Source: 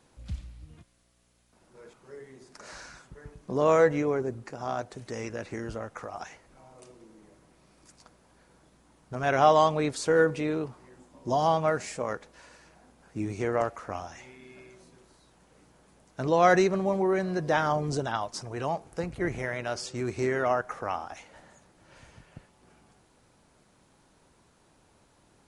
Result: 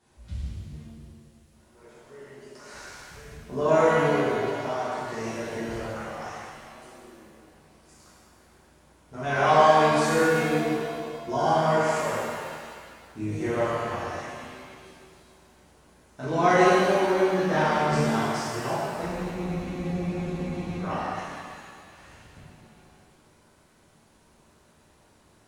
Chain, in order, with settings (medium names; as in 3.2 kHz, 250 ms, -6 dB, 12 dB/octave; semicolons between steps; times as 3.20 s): spectral freeze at 19.06 s, 1.74 s; pitch-shifted reverb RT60 1.9 s, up +7 st, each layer -8 dB, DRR -10.5 dB; trim -8 dB